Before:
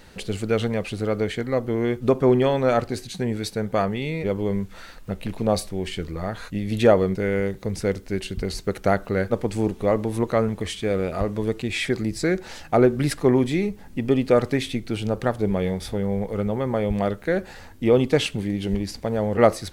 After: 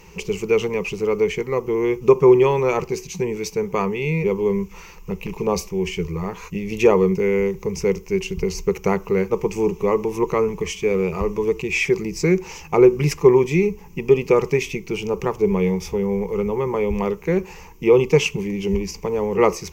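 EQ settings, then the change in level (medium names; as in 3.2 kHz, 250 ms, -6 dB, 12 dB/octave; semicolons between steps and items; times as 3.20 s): rippled EQ curve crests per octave 0.77, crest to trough 17 dB; 0.0 dB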